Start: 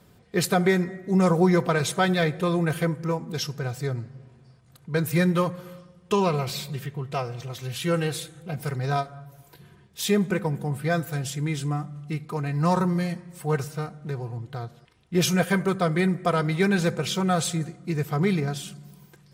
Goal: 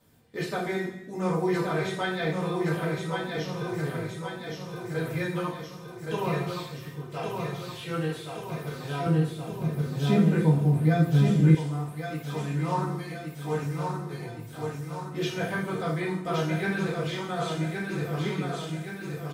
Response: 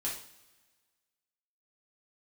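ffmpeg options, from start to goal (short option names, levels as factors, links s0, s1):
-filter_complex "[0:a]highshelf=f=8600:g=5.5,aecho=1:1:1120|2240|3360|4480|5600|6720|7840:0.596|0.322|0.174|0.0938|0.0506|0.0274|0.0148[s0];[1:a]atrim=start_sample=2205,afade=t=out:st=0.43:d=0.01,atrim=end_sample=19404[s1];[s0][s1]afir=irnorm=-1:irlink=0,acrossover=split=4000[s2][s3];[s3]acompressor=threshold=0.00631:ratio=4:attack=1:release=60[s4];[s2][s4]amix=inputs=2:normalize=0,asettb=1/sr,asplit=3[s5][s6][s7];[s5]atrim=end=9.064[s8];[s6]atrim=start=9.06:end=11.55,asetpts=PTS-STARTPTS,afade=t=in:d=0.004:c=qsin,afade=t=out:st=2.486:d=0.004:c=qsin,equalizer=f=170:w=0.53:g=13[s9];[s7]atrim=start=11.546[s10];[s8][s9]acrossfade=d=0.004:c1=hsin:c2=qsin[s11];[s11][s10]acrossfade=d=0.004:c1=qsin:c2=hsin,volume=0.398"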